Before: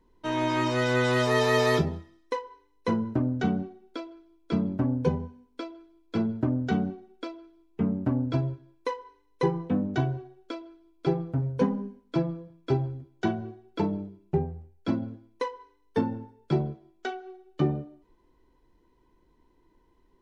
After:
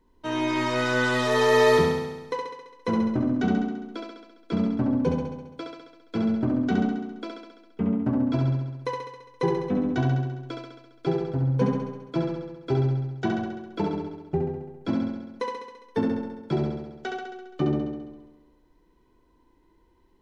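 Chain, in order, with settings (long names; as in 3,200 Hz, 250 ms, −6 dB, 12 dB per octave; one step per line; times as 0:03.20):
mains-hum notches 50/100/150 Hz
on a send: flutter between parallel walls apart 11.6 metres, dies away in 1.1 s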